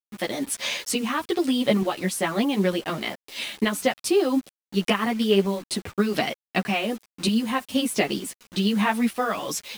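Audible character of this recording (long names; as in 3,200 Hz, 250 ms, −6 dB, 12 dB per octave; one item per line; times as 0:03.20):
tremolo saw up 1.1 Hz, depth 50%
a quantiser's noise floor 8 bits, dither none
a shimmering, thickened sound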